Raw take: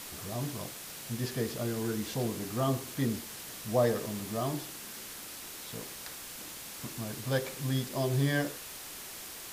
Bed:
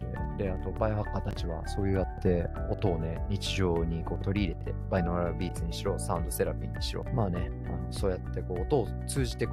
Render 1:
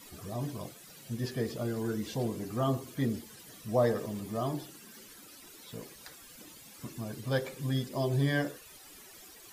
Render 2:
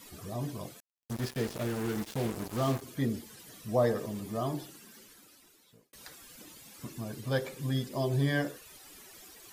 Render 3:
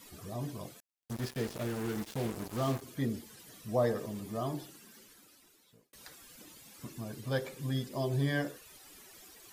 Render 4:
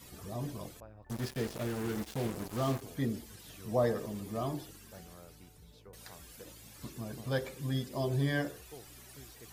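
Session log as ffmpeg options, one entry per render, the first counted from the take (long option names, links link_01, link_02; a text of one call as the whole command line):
ffmpeg -i in.wav -af "afftdn=noise_reduction=14:noise_floor=-45" out.wav
ffmpeg -i in.wav -filter_complex "[0:a]asettb=1/sr,asplit=3[link_01][link_02][link_03];[link_01]atrim=end=0.804[link_04];[link_02]atrim=start=0.8:end=2.82,asetpts=PTS-STARTPTS,afade=type=in:duration=0.004:curve=qsin,afade=type=out:start_time=2.016:duration=0.004:curve=qsin,acrusher=bits=5:mix=0:aa=0.5[link_05];[link_03]atrim=start=2.816[link_06];[link_04][link_05]acrossfade=duration=0.004:curve1=hsin:curve2=qsin[link_07];[link_07][link_06]acrossfade=duration=0.004:curve1=qsin:curve2=hsin,asplit=2[link_08][link_09];[link_08]atrim=end=5.93,asetpts=PTS-STARTPTS,afade=type=out:start_time=4.64:duration=1.29[link_10];[link_09]atrim=start=5.93,asetpts=PTS-STARTPTS,afade=type=in:duration=0.004:curve=hsin[link_11];[link_10][link_11]concat=n=2:v=0:a=1" out.wav
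ffmpeg -i in.wav -af "volume=-2.5dB" out.wav
ffmpeg -i in.wav -i bed.wav -filter_complex "[1:a]volume=-24dB[link_01];[0:a][link_01]amix=inputs=2:normalize=0" out.wav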